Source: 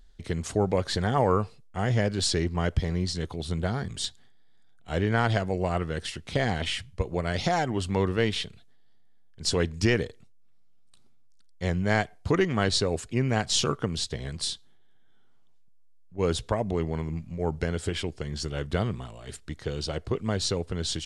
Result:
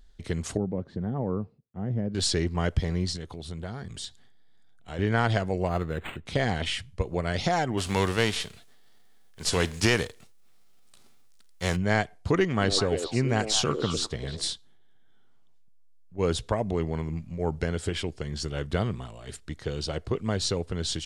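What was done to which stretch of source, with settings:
0.57–2.15 s: band-pass filter 200 Hz, Q 1.2
3.16–4.99 s: compression 2:1, threshold -38 dBFS
5.67–6.26 s: decimation joined by straight lines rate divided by 8×
7.77–11.75 s: formants flattened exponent 0.6
12.50–14.53 s: repeats whose band climbs or falls 102 ms, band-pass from 390 Hz, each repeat 1.4 oct, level -2.5 dB

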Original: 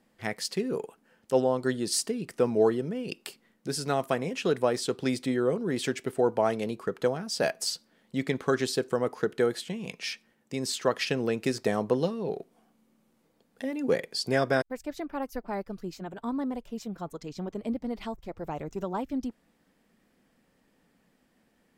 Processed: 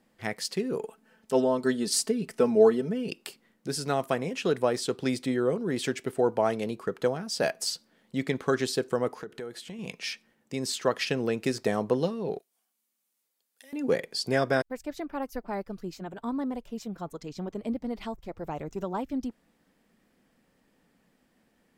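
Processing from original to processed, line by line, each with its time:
0.81–3.09 s: comb 4.6 ms
9.15–9.79 s: compression 3:1, threshold -39 dBFS
12.39–13.73 s: differentiator

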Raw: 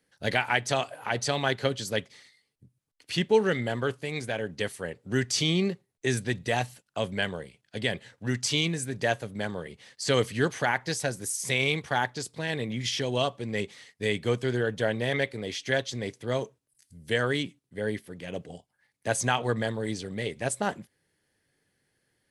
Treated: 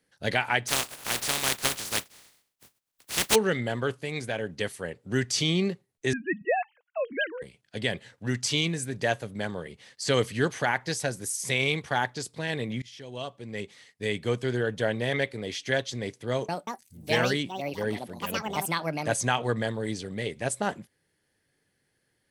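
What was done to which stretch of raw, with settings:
0.67–3.34 s: spectral contrast reduction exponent 0.18
6.13–7.42 s: formants replaced by sine waves
12.82–14.97 s: fade in equal-power, from -23 dB
16.30–19.84 s: ever faster or slower copies 185 ms, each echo +5 st, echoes 2

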